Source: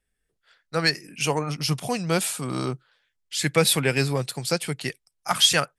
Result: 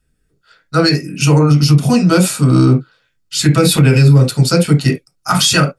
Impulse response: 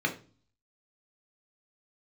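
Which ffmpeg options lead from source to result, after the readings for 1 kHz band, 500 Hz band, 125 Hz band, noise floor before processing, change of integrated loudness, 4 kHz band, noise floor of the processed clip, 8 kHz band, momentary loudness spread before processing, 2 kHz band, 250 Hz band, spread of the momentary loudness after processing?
+9.0 dB, +9.5 dB, +19.0 dB, -78 dBFS, +12.0 dB, +6.0 dB, -64 dBFS, +7.5 dB, 12 LU, +6.0 dB, +17.0 dB, 8 LU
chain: -filter_complex "[0:a]asplit=2[a][b];[1:a]atrim=start_sample=2205,atrim=end_sample=3528,lowshelf=f=290:g=12[c];[b][c]afir=irnorm=-1:irlink=0,volume=-9.5dB[d];[a][d]amix=inputs=2:normalize=0,alimiter=level_in=11dB:limit=-1dB:release=50:level=0:latency=1,volume=-1dB"

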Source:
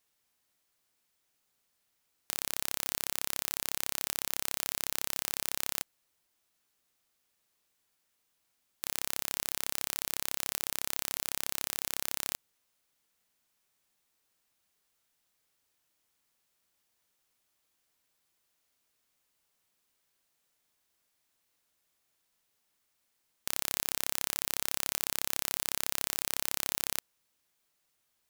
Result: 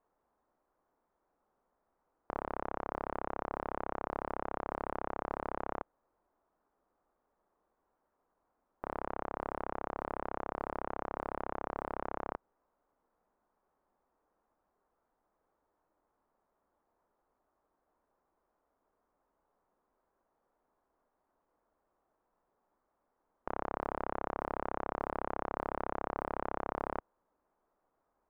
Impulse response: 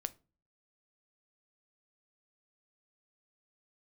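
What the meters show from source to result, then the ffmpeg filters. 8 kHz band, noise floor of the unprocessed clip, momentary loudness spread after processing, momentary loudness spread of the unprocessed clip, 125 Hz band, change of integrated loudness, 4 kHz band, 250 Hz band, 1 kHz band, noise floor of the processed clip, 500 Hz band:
under -40 dB, -78 dBFS, 4 LU, 4 LU, +2.0 dB, -7.0 dB, under -25 dB, +7.0 dB, +8.5 dB, -82 dBFS, +10.0 dB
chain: -af "lowpass=f=1.1k:w=0.5412,lowpass=f=1.1k:w=1.3066,equalizer=f=120:t=o:w=1.4:g=-13,volume=11dB"

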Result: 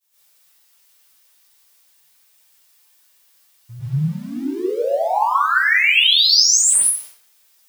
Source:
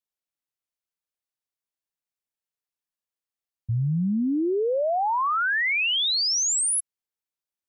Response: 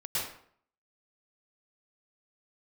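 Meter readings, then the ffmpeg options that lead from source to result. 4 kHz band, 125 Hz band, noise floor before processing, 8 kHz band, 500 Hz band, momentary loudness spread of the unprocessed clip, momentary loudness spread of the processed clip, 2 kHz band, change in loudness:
+10.0 dB, +2.5 dB, under -85 dBFS, +9.0 dB, +3.5 dB, 5 LU, 14 LU, +8.5 dB, +8.0 dB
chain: -filter_complex "[0:a]aeval=exprs='val(0)+0.5*0.00562*sgn(val(0))':c=same,aemphasis=mode=production:type=75kf,agate=range=-33dB:threshold=-26dB:ratio=3:detection=peak,asplit=2[a][b];[b]highpass=f=720:p=1,volume=9dB,asoftclip=type=tanh:threshold=-5.5dB[c];[a][c]amix=inputs=2:normalize=0,lowpass=f=4.8k:p=1,volume=-6dB[d];[1:a]atrim=start_sample=2205[e];[d][e]afir=irnorm=-1:irlink=0,flanger=delay=6.6:depth=3:regen=54:speed=0.48:shape=triangular"

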